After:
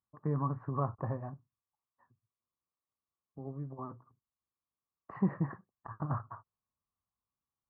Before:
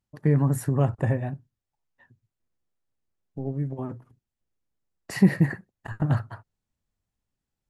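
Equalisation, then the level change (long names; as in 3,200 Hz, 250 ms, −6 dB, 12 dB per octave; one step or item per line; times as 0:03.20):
high-pass filter 53 Hz
transistor ladder low-pass 1,200 Hz, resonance 80%
0.0 dB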